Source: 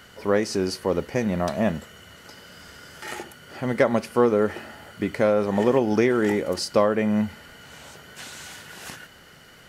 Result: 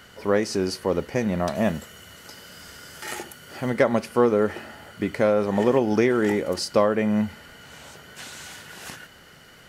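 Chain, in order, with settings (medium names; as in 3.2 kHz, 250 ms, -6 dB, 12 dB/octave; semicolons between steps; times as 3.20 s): 1.55–3.70 s: treble shelf 5.5 kHz +7.5 dB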